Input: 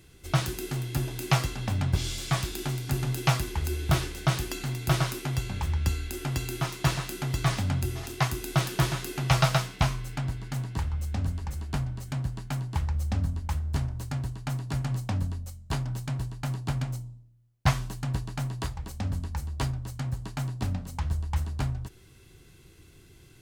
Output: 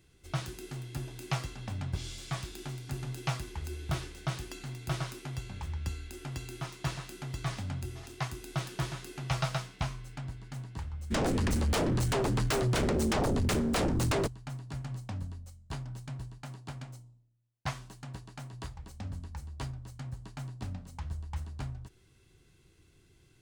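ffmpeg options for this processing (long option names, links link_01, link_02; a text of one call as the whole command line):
ffmpeg -i in.wav -filter_complex "[0:a]asplit=3[link_01][link_02][link_03];[link_01]afade=type=out:start_time=11.1:duration=0.02[link_04];[link_02]aeval=exprs='0.158*sin(PI/2*8.91*val(0)/0.158)':channel_layout=same,afade=type=in:start_time=11.1:duration=0.02,afade=type=out:start_time=14.26:duration=0.02[link_05];[link_03]afade=type=in:start_time=14.26:duration=0.02[link_06];[link_04][link_05][link_06]amix=inputs=3:normalize=0,asettb=1/sr,asplit=3[link_07][link_08][link_09];[link_07]atrim=end=16.384[link_10];[link_08]atrim=start=16.38:end=18.53,asetpts=PTS-STARTPTS,afade=type=in:duration=0.004:curve=qsin,afade=type=out:start_time=2.146:duration=0.004:curve=qsin,lowshelf=frequency=120:gain=-10[link_11];[link_09]atrim=start=18.526[link_12];[link_10][link_11]acrossfade=duration=0.004:curve1=hsin:curve2=qsin[link_13];[link_13][link_12]acrossfade=duration=0.004:curve1=qsin:curve2=hsin,equalizer=frequency=13000:width=3.5:gain=-13,volume=-9dB" out.wav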